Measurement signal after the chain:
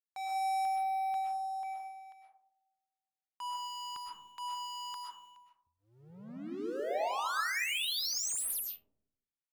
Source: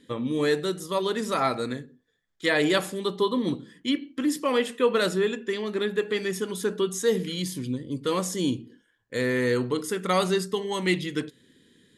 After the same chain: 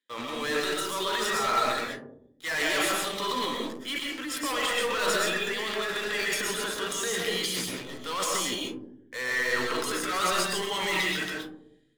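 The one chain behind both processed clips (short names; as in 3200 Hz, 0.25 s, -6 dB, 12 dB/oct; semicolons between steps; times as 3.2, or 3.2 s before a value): HPF 1500 Hz 12 dB/oct; tilt -3 dB/oct; sample leveller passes 5; transient shaper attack -4 dB, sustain +11 dB; digital reverb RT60 0.72 s, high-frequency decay 0.25×, pre-delay 85 ms, DRR -1.5 dB; gain -8.5 dB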